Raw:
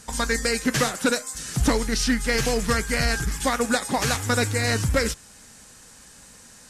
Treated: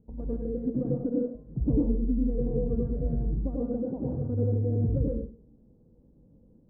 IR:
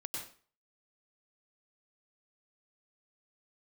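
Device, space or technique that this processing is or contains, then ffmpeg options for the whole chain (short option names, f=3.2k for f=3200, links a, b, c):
next room: -filter_complex "[0:a]lowpass=f=440:w=0.5412,lowpass=f=440:w=1.3066[a];[1:a]atrim=start_sample=2205[b];[a][b]afir=irnorm=-1:irlink=0,volume=-2dB"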